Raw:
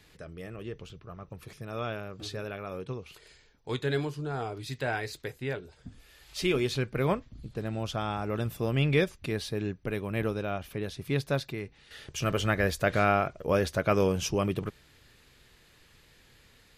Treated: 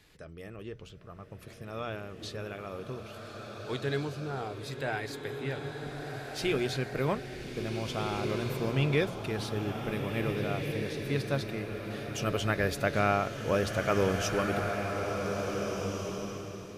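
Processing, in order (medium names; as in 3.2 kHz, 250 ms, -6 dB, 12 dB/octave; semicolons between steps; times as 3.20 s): hum notches 60/120/180 Hz; swelling reverb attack 1790 ms, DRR 3 dB; trim -2.5 dB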